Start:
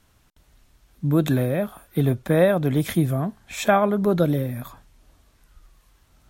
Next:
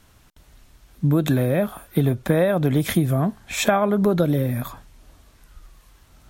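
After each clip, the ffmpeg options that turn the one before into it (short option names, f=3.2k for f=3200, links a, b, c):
-af "acompressor=threshold=-21dB:ratio=6,volume=6dB"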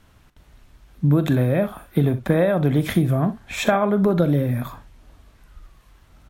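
-af "bass=f=250:g=1,treble=f=4k:g=-7,aecho=1:1:41|63:0.188|0.178"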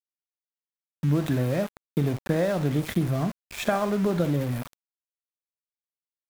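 -af "aeval=exprs='val(0)*gte(abs(val(0)),0.0447)':c=same,volume=-6dB"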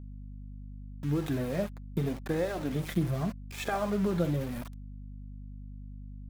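-af "flanger=delay=2.3:depth=3.7:regen=-25:speed=0.83:shape=sinusoidal,aeval=exprs='val(0)+0.01*(sin(2*PI*50*n/s)+sin(2*PI*2*50*n/s)/2+sin(2*PI*3*50*n/s)/3+sin(2*PI*4*50*n/s)/4+sin(2*PI*5*50*n/s)/5)':c=same,volume=-2dB"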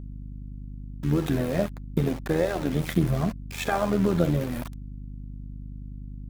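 -af "tremolo=f=81:d=0.621,volume=8.5dB"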